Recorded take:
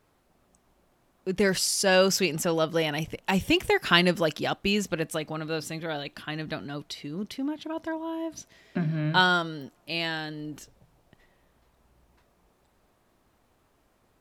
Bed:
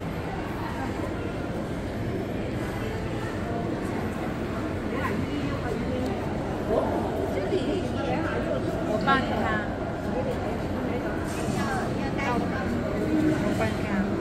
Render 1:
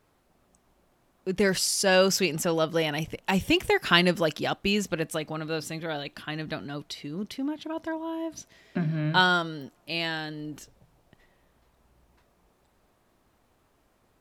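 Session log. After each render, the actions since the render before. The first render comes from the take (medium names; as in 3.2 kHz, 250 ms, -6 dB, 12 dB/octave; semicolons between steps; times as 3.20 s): no audible change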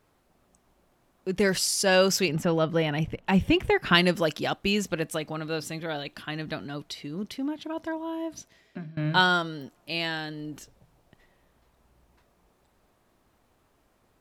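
2.28–3.95 s: tone controls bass +6 dB, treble -12 dB; 8.32–8.97 s: fade out, to -22 dB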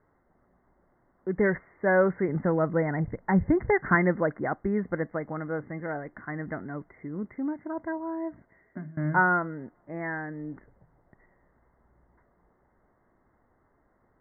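Chebyshev low-pass 2.1 kHz, order 10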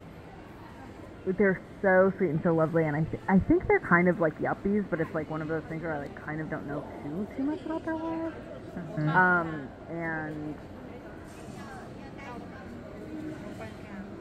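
add bed -15 dB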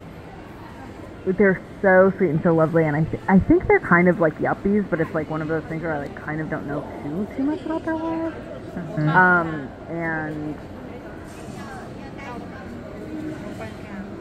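trim +7.5 dB; peak limiter -3 dBFS, peak gain reduction 2.5 dB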